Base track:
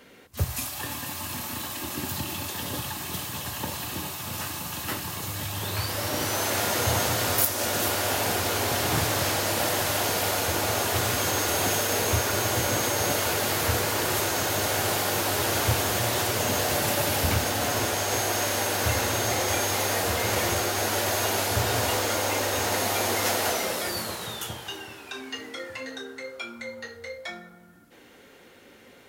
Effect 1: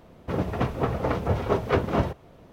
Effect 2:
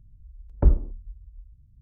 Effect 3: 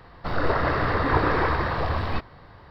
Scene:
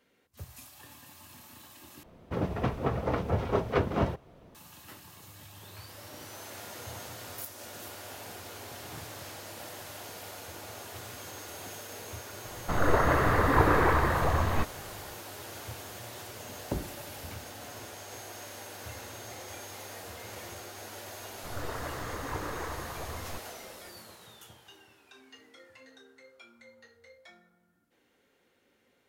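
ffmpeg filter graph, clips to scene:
-filter_complex "[3:a]asplit=2[s0][s1];[0:a]volume=0.126[s2];[s0]equalizer=f=5000:t=o:w=0.99:g=-7.5[s3];[2:a]highpass=150[s4];[s2]asplit=2[s5][s6];[s5]atrim=end=2.034[s7];[1:a]atrim=end=2.52,asetpts=PTS-STARTPTS,volume=0.631[s8];[s6]atrim=start=4.546[s9];[s3]atrim=end=2.7,asetpts=PTS-STARTPTS,volume=0.891,afade=t=in:d=0.004:c=hsin,afade=t=out:st=2.696:d=0.004:c=hsin,adelay=12440[s10];[s4]atrim=end=1.81,asetpts=PTS-STARTPTS,volume=0.562,afade=t=in:d=0.004:c=hsin,afade=t=out:st=1.806:d=0.004:c=hsin,adelay=16090[s11];[s1]atrim=end=2.7,asetpts=PTS-STARTPTS,volume=0.178,afade=t=in:d=0.004:c=hsin,afade=t=out:st=2.696:d=0.004:c=hsin,adelay=21190[s12];[s7][s8]acrossfade=d=0.004:c1=hsin:c2=hsin[s13];[s13][s9]acrossfade=d=0.004:c1=hsin:c2=hsin[s14];[s14][s10][s11][s12]amix=inputs=4:normalize=0"

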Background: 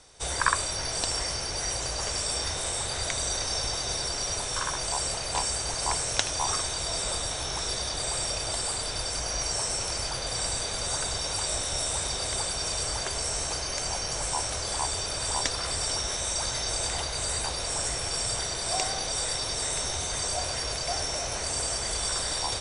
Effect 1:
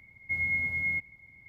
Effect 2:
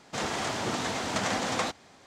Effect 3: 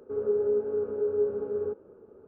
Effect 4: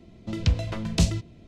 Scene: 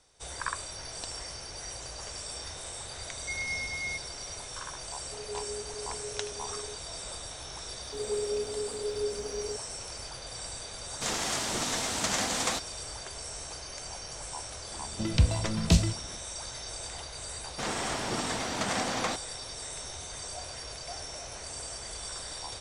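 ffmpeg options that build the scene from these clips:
-filter_complex "[3:a]asplit=2[s0][s1];[2:a]asplit=2[s2][s3];[0:a]volume=0.316[s4];[s1]aeval=exprs='val(0)*gte(abs(val(0)),0.00376)':c=same[s5];[s2]equalizer=f=11000:t=o:w=2.1:g=13.5[s6];[1:a]atrim=end=1.48,asetpts=PTS-STARTPTS,volume=0.501,afade=t=in:d=0.004:c=hsin,afade=t=out:st=1.476:d=0.004:c=hsin,adelay=2980[s7];[s0]atrim=end=2.27,asetpts=PTS-STARTPTS,volume=0.2,afade=t=in:d=0.004:c=hsin,afade=t=out:st=2.266:d=0.004:c=hsin,adelay=5020[s8];[s5]atrim=end=2.27,asetpts=PTS-STARTPTS,volume=0.501,afade=t=in:d=0.004:c=hsin,afade=t=out:st=2.266:d=0.004:c=hsin,adelay=7830[s9];[s6]atrim=end=2.06,asetpts=PTS-STARTPTS,volume=0.631,afade=t=in:d=0.004:c=hsin,afade=t=out:st=2.056:d=0.004:c=hsin,adelay=10880[s10];[4:a]atrim=end=1.47,asetpts=PTS-STARTPTS,volume=0.944,afade=t=in:d=0.004:c=hsin,afade=t=out:st=1.466:d=0.004:c=hsin,adelay=14720[s11];[s3]atrim=end=2.06,asetpts=PTS-STARTPTS,volume=0.794,afade=t=in:d=0.004:c=hsin,afade=t=out:st=2.056:d=0.004:c=hsin,adelay=17450[s12];[s4][s7][s8][s9][s10][s11][s12]amix=inputs=7:normalize=0"

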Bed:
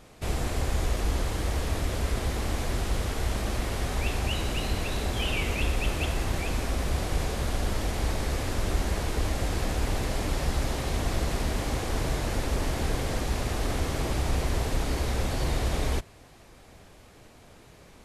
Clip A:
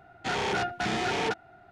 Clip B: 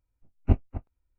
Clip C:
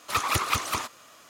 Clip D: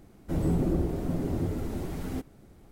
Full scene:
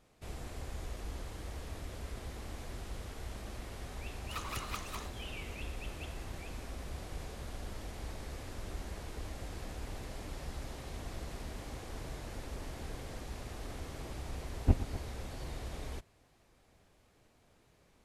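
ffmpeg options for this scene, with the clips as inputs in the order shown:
-filter_complex "[0:a]volume=0.178[s0];[2:a]aecho=1:1:115:0.211[s1];[3:a]atrim=end=1.29,asetpts=PTS-STARTPTS,volume=0.158,afade=t=in:d=0.004:c=hsin,afade=t=out:st=1.286:d=0.004:c=hsin,adelay=185661S[s2];[s1]atrim=end=1.18,asetpts=PTS-STARTPTS,volume=0.562,afade=t=in:d=0.004:c=hsin,afade=t=out:st=1.176:d=0.004:c=hsin,adelay=14190[s3];[s0][s2][s3]amix=inputs=3:normalize=0"

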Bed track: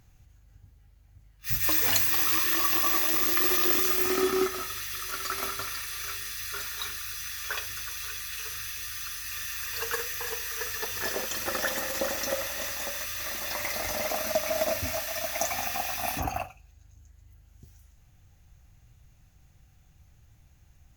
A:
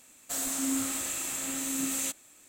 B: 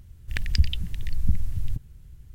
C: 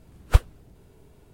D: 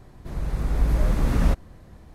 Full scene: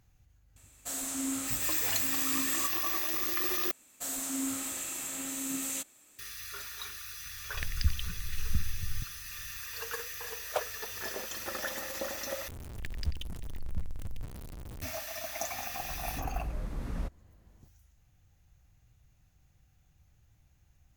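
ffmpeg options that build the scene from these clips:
-filter_complex "[1:a]asplit=2[s0][s1];[2:a]asplit=2[s2][s3];[0:a]volume=0.447[s4];[s1]equalizer=f=14000:w=7.5:g=6[s5];[3:a]highpass=f=610:t=q:w=4.8[s6];[s3]aeval=exprs='val(0)+0.5*0.0631*sgn(val(0))':c=same[s7];[s4]asplit=3[s8][s9][s10];[s8]atrim=end=3.714[s11];[s5]atrim=end=2.48,asetpts=PTS-STARTPTS,volume=0.631[s12];[s9]atrim=start=6.186:end=12.484[s13];[s7]atrim=end=2.34,asetpts=PTS-STARTPTS,volume=0.2[s14];[s10]atrim=start=14.816[s15];[s0]atrim=end=2.48,asetpts=PTS-STARTPTS,volume=0.631,afade=t=in:d=0.004:c=hsin,afade=t=out:st=2.476:d=0.004:c=hsin,adelay=560[s16];[s2]atrim=end=2.34,asetpts=PTS-STARTPTS,volume=0.398,afade=t=in:d=0.004:c=hsin,afade=t=out:st=2.336:d=0.004:c=hsin,adelay=7260[s17];[s6]atrim=end=1.33,asetpts=PTS-STARTPTS,volume=0.398,afade=t=in:d=0.004:c=hsin,afade=t=out:st=1.326:d=0.004:c=hsin,adelay=10220[s18];[4:a]atrim=end=2.14,asetpts=PTS-STARTPTS,volume=0.168,afade=t=in:d=0.004:c=hsin,afade=t=out:st=2.136:d=0.004:c=hsin,adelay=15540[s19];[s11][s12]acrossfade=d=0.004:c1=hsin:c2=hsin[s20];[s20][s13]acrossfade=d=0.004:c1=hsin:c2=hsin[s21];[s21][s14]acrossfade=d=0.004:c1=hsin:c2=hsin[s22];[s22][s15]acrossfade=d=0.004:c1=hsin:c2=hsin[s23];[s23][s16][s17][s18][s19]amix=inputs=5:normalize=0"

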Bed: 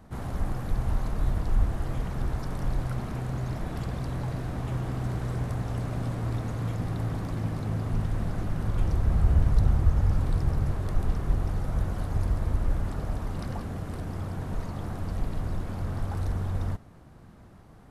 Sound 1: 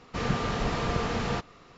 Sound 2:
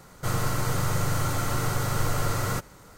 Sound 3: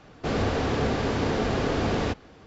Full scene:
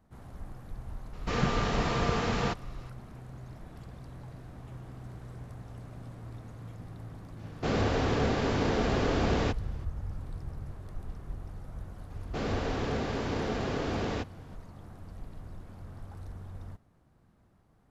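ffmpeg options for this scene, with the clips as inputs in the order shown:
-filter_complex "[3:a]asplit=2[s0][s1];[0:a]volume=0.2[s2];[1:a]atrim=end=1.77,asetpts=PTS-STARTPTS,afade=t=in:d=0.004:c=hsin,afade=t=out:st=1.766:d=0.004:c=hsin,adelay=1130[s3];[s0]atrim=end=2.46,asetpts=PTS-STARTPTS,volume=0.75,afade=t=in:d=0.004:c=hsin,afade=t=out:st=2.456:d=0.004:c=hsin,adelay=7390[s4];[s1]atrim=end=2.46,asetpts=PTS-STARTPTS,volume=0.473,afade=t=in:d=0.004:c=hsin,afade=t=out:st=2.456:d=0.004:c=hsin,adelay=12100[s5];[s2][s3][s4][s5]amix=inputs=4:normalize=0"

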